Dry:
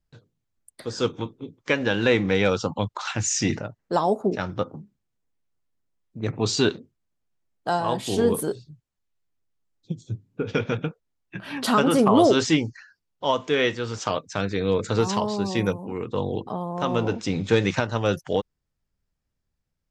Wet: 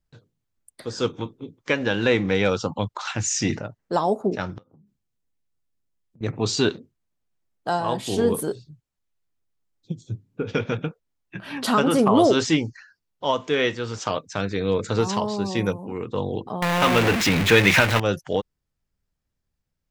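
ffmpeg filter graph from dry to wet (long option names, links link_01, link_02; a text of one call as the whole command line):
ffmpeg -i in.wav -filter_complex "[0:a]asettb=1/sr,asplit=3[link_01][link_02][link_03];[link_01]atrim=end=4.584[link_04];[link_02]atrim=start=4.58:end=6.21,asetpts=PTS-STARTPTS,afade=type=in:duration=0.004:curve=qsin,afade=type=out:start_time=1.626:duration=0.004:curve=qsin,equalizer=frequency=870:width=0.39:gain=-4,acompressor=threshold=-51dB:ratio=12:attack=3.2:release=140:knee=1:detection=peak[link_05];[link_03]atrim=start=6.206[link_06];[link_04][link_05]acrossfade=duration=0.004:curve1=hsin:curve2=qsin[link_07];[link_07][link_06]acrossfade=duration=0.004:curve1=qsin:curve2=hsin,asettb=1/sr,asplit=3[link_08][link_09][link_10];[link_08]atrim=end=16.624[link_11];[link_09]atrim=start=16.62:end=18,asetpts=PTS-STARTPTS,afade=type=in:duration=0.004:curve=qsin,afade=type=out:start_time=1.376:duration=0.004:curve=qsin,aeval=exprs='val(0)+0.5*0.0841*sgn(val(0))':channel_layout=same,equalizer=frequency=2200:width=1:gain=11.5[link_12];[link_10]atrim=start=17.996[link_13];[link_11][link_12]acrossfade=duration=0.004:curve1=hsin:curve2=qsin[link_14];[link_14][link_13]acrossfade=duration=0.004:curve1=qsin:curve2=hsin" out.wav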